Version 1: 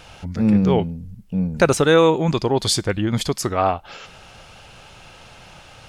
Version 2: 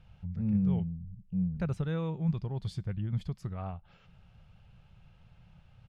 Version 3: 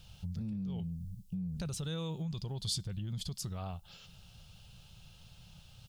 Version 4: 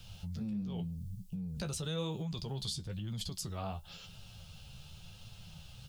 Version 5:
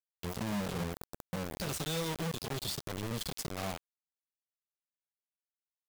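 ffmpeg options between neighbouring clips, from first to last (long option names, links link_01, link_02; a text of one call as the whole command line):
ffmpeg -i in.wav -af "firequalizer=gain_entry='entry(180,0);entry(260,-17);entry(2900,-18);entry(6300,-28)':delay=0.05:min_phase=1,volume=-7.5dB" out.wav
ffmpeg -i in.wav -af "alimiter=level_in=4.5dB:limit=-24dB:level=0:latency=1:release=14,volume=-4.5dB,acompressor=threshold=-36dB:ratio=6,aexciter=amount=9.5:drive=2.9:freq=3100,volume=1dB" out.wav
ffmpeg -i in.wav -filter_complex "[0:a]acrossover=split=490[link_01][link_02];[link_02]acompressor=threshold=-41dB:ratio=6[link_03];[link_01][link_03]amix=inputs=2:normalize=0,flanger=delay=8.7:depth=6.5:regen=38:speed=0.95:shape=triangular,acrossover=split=240|2500[link_04][link_05][link_06];[link_04]alimiter=level_in=21dB:limit=-24dB:level=0:latency=1,volume=-21dB[link_07];[link_07][link_05][link_06]amix=inputs=3:normalize=0,volume=8dB" out.wav
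ffmpeg -i in.wav -af "acrusher=bits=5:mix=0:aa=0.000001" out.wav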